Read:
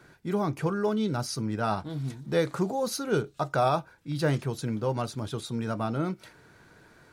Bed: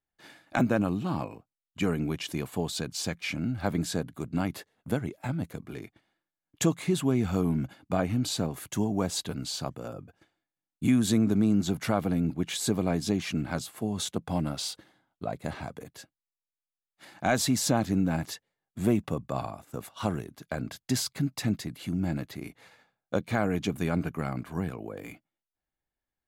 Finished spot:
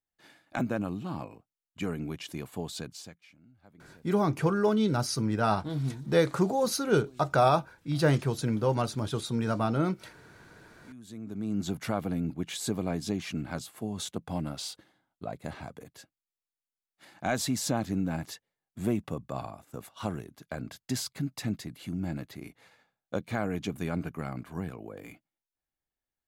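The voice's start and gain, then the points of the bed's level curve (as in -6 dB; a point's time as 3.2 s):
3.80 s, +2.0 dB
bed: 2.87 s -5.5 dB
3.37 s -29 dB
10.85 s -29 dB
11.63 s -4 dB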